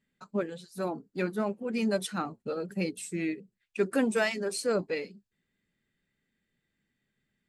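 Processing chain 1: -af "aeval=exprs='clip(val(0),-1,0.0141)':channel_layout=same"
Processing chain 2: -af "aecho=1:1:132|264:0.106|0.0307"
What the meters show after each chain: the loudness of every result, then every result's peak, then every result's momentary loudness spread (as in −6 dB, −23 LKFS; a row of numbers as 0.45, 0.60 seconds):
−34.0, −32.0 LKFS; −14.5, −14.0 dBFS; 8, 9 LU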